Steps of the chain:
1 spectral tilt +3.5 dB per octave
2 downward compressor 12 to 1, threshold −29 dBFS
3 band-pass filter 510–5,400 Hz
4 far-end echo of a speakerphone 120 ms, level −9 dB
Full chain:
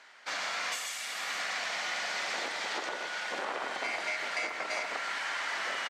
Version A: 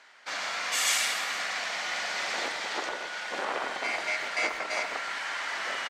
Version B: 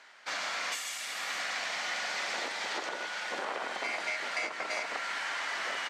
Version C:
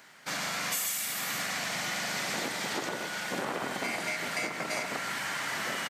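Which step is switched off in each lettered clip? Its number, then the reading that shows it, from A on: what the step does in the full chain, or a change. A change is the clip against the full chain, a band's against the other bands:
2, average gain reduction 2.5 dB
4, echo-to-direct ratio −13.0 dB to none audible
3, 250 Hz band +10.0 dB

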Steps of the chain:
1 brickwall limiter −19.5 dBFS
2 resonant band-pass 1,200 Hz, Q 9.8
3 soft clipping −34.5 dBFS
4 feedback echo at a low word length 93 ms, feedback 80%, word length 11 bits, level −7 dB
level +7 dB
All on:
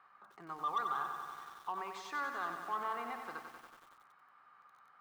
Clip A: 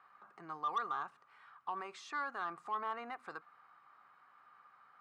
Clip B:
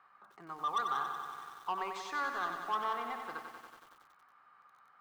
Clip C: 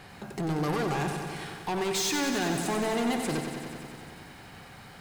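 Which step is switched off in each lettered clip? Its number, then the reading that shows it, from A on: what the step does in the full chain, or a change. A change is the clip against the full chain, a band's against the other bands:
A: 4, 8 kHz band −2.0 dB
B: 1, 4 kHz band +3.0 dB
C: 2, 1 kHz band −18.5 dB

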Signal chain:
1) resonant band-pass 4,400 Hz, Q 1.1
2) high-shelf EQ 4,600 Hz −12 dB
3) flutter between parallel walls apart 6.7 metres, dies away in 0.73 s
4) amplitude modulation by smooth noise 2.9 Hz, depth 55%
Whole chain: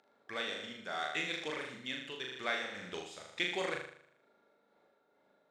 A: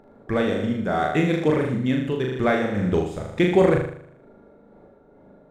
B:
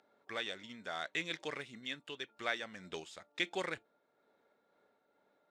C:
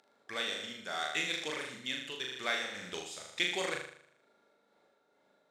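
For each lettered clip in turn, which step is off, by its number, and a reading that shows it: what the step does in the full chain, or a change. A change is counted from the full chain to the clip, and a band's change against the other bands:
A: 1, 4 kHz band −19.0 dB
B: 3, change in crest factor +2.5 dB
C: 2, 8 kHz band +8.0 dB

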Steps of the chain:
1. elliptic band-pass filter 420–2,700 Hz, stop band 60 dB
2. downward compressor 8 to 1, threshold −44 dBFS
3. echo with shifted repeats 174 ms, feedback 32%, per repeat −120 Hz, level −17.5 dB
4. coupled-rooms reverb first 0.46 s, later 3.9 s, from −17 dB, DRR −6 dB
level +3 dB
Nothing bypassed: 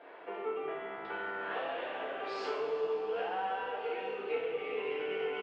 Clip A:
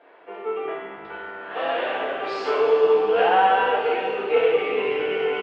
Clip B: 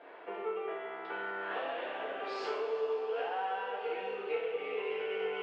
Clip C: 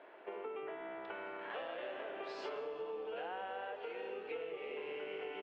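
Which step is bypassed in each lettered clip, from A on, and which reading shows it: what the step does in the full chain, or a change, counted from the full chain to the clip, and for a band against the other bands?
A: 2, average gain reduction 11.0 dB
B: 3, 250 Hz band −2.0 dB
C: 4, change in momentary loudness spread −2 LU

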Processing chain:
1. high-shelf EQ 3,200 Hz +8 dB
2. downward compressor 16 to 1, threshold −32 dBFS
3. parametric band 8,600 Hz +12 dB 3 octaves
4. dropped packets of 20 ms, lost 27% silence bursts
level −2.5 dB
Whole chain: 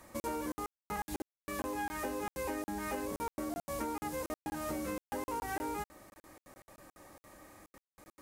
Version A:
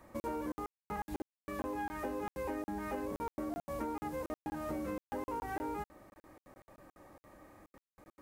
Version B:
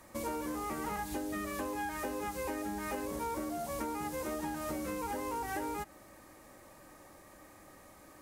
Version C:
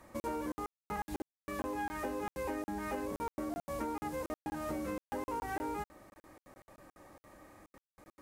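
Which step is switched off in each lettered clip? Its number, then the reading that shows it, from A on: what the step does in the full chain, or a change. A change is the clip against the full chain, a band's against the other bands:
3, 8 kHz band −10.5 dB
4, change in integrated loudness +1.5 LU
1, 8 kHz band −6.5 dB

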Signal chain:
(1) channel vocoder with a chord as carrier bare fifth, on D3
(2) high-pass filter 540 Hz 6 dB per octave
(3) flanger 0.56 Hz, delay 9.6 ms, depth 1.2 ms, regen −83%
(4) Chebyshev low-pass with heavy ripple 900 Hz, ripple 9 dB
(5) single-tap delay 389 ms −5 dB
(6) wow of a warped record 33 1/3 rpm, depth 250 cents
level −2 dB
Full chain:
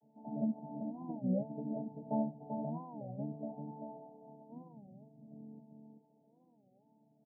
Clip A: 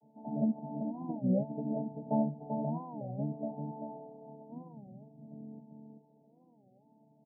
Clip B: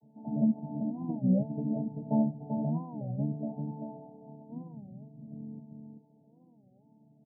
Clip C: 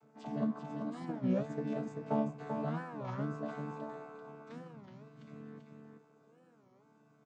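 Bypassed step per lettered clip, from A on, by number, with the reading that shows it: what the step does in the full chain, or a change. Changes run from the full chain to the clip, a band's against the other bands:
3, change in integrated loudness +4.5 LU
2, 125 Hz band +8.0 dB
4, 250 Hz band −2.0 dB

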